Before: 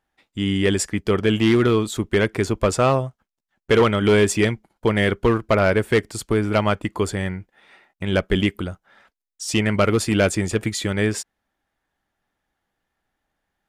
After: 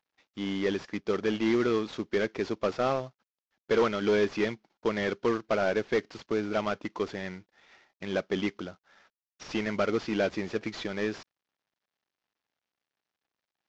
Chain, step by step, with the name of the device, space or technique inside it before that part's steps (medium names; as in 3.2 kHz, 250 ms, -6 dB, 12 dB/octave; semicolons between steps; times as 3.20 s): early wireless headset (high-pass 210 Hz 12 dB/octave; CVSD coder 32 kbps); trim -7 dB